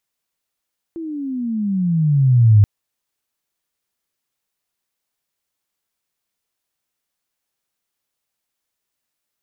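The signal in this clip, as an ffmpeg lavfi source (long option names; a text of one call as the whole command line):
ffmpeg -f lavfi -i "aevalsrc='pow(10,(-6+19.5*(t/1.68-1))/20)*sin(2*PI*338*1.68/(-21*log(2)/12)*(exp(-21*log(2)/12*t/1.68)-1))':duration=1.68:sample_rate=44100" out.wav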